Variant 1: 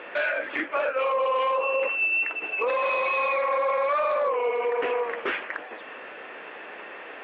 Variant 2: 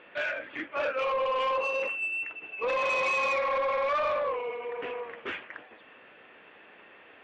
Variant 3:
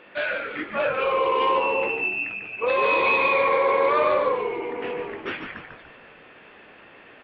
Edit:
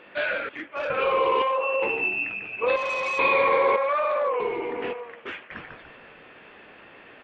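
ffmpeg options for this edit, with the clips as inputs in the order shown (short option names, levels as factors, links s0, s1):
-filter_complex "[1:a]asplit=3[s0][s1][s2];[0:a]asplit=2[s3][s4];[2:a]asplit=6[s5][s6][s7][s8][s9][s10];[s5]atrim=end=0.492[s11];[s0]atrim=start=0.488:end=0.902[s12];[s6]atrim=start=0.898:end=1.422[s13];[s3]atrim=start=1.418:end=1.822[s14];[s7]atrim=start=1.818:end=2.762[s15];[s1]atrim=start=2.758:end=3.192[s16];[s8]atrim=start=3.188:end=3.762[s17];[s4]atrim=start=3.758:end=4.402[s18];[s9]atrim=start=4.398:end=4.932[s19];[s2]atrim=start=4.928:end=5.512[s20];[s10]atrim=start=5.508[s21];[s11][s12]acrossfade=d=0.004:c1=hsin:c2=hsin[s22];[s22][s13]acrossfade=d=0.004:c1=hsin:c2=hsin[s23];[s23][s14]acrossfade=d=0.004:c1=hsin:c2=hsin[s24];[s24][s15]acrossfade=d=0.004:c1=hsin:c2=hsin[s25];[s25][s16]acrossfade=d=0.004:c1=hsin:c2=hsin[s26];[s26][s17]acrossfade=d=0.004:c1=hsin:c2=hsin[s27];[s27][s18]acrossfade=d=0.004:c1=hsin:c2=hsin[s28];[s28][s19]acrossfade=d=0.004:c1=hsin:c2=hsin[s29];[s29][s20]acrossfade=d=0.004:c1=hsin:c2=hsin[s30];[s30][s21]acrossfade=d=0.004:c1=hsin:c2=hsin"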